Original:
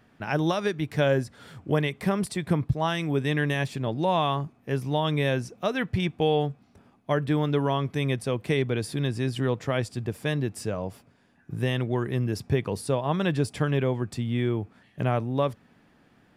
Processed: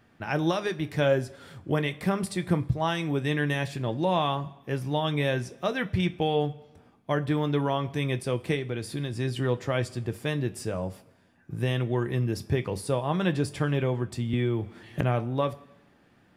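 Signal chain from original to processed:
0:08.54–0:09.13: downward compressor, threshold −26 dBFS, peak gain reduction 6.5 dB
convolution reverb, pre-delay 3 ms, DRR 7.5 dB
0:14.33–0:15.01: multiband upward and downward compressor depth 100%
level −1.5 dB

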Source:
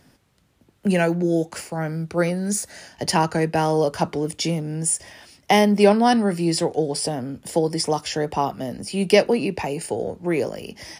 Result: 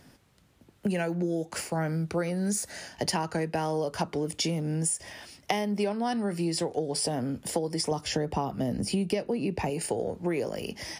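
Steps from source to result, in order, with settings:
0:07.91–0:09.70: low-shelf EQ 390 Hz +9 dB
downward compressor 12 to 1, threshold −25 dBFS, peak gain reduction 19.5 dB

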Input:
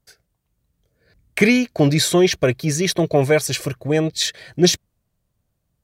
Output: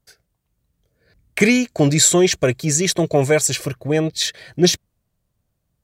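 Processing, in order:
0:01.40–0:03.53: parametric band 7,400 Hz +14 dB 0.34 octaves

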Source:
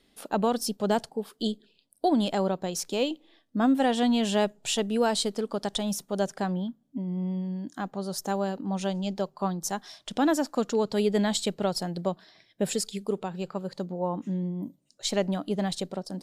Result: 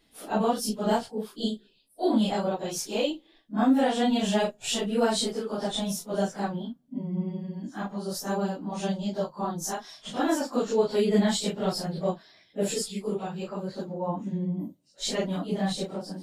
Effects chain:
random phases in long frames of 100 ms
0:08.92–0:09.72: parametric band 2,400 Hz −7 dB 0.49 octaves

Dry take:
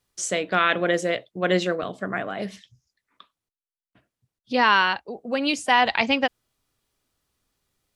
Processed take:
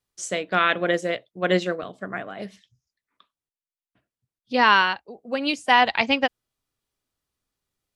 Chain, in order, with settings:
expander for the loud parts 1.5 to 1, over −36 dBFS
level +2 dB

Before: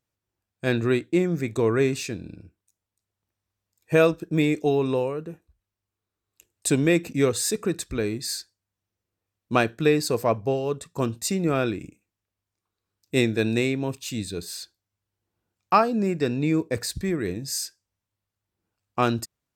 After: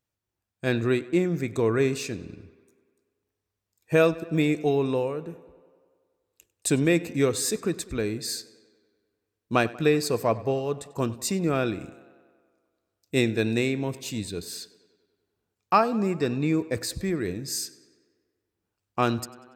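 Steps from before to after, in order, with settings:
tape delay 96 ms, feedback 72%, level −18.5 dB, low-pass 4,800 Hz
level −1.5 dB

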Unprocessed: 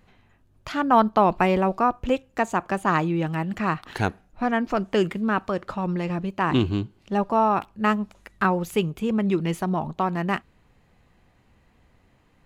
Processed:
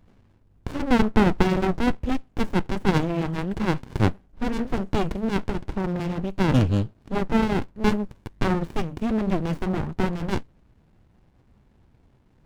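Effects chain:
flanger 1.4 Hz, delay 2 ms, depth 8.5 ms, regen −64%
windowed peak hold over 65 samples
level +7.5 dB

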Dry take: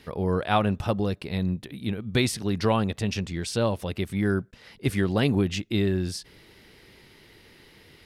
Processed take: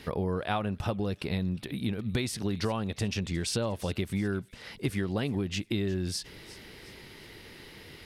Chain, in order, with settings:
downward compressor 6 to 1, threshold −32 dBFS, peak gain reduction 14 dB
on a send: delay with a high-pass on its return 358 ms, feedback 43%, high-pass 2,500 Hz, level −16.5 dB
on the sum: level +4.5 dB

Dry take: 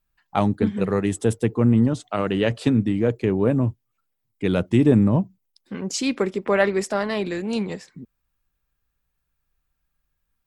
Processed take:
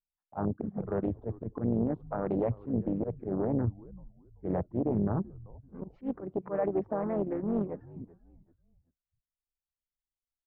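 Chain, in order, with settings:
low-pass filter 1,100 Hz 24 dB per octave
noise gate with hold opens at −49 dBFS
reverb reduction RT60 0.63 s
volume swells 138 ms
brickwall limiter −17.5 dBFS, peak gain reduction 11 dB
pitch-shifted copies added −4 semitones −9 dB
on a send: echo with shifted repeats 385 ms, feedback 33%, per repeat −84 Hz, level −19.5 dB
on the sum: highs frequency-modulated by the lows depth 0.81 ms
level −4 dB

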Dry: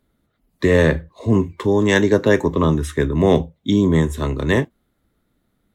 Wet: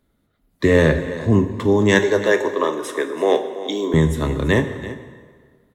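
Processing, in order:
0:01.99–0:03.94: high-pass filter 360 Hz 24 dB per octave
single-tap delay 332 ms −15 dB
dense smooth reverb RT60 1.7 s, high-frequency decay 0.8×, DRR 8.5 dB

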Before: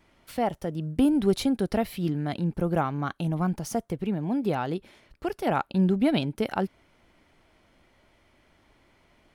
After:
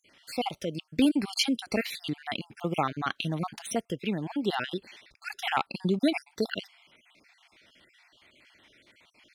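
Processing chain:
time-frequency cells dropped at random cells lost 46%
meter weighting curve D

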